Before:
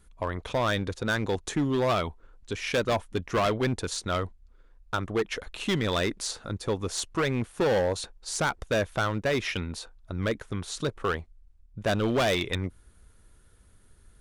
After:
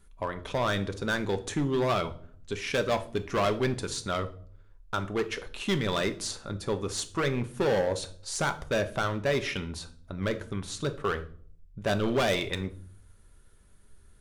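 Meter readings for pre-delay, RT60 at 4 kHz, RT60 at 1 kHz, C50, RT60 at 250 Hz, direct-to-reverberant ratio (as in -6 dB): 5 ms, 0.40 s, 0.45 s, 15.0 dB, 0.75 s, 7.5 dB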